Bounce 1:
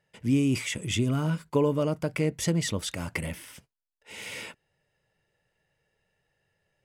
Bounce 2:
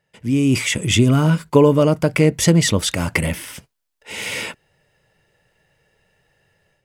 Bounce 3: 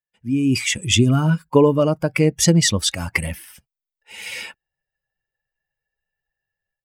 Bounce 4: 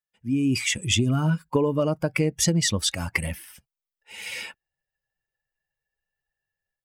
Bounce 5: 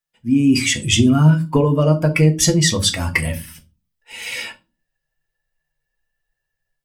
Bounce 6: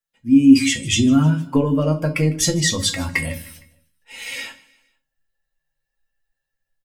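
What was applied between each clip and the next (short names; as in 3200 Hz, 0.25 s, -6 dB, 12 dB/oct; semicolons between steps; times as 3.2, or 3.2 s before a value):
AGC gain up to 9.5 dB; gain +3 dB
per-bin expansion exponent 1.5; dynamic EQ 5300 Hz, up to +5 dB, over -38 dBFS, Q 0.88
compressor, threshold -15 dBFS, peak gain reduction 7 dB; gain -3 dB
reverb RT60 0.30 s, pre-delay 3 ms, DRR 3 dB; gain +5 dB
resonator 270 Hz, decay 0.21 s, harmonics all, mix 80%; feedback echo 0.154 s, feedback 49%, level -21.5 dB; gain +7 dB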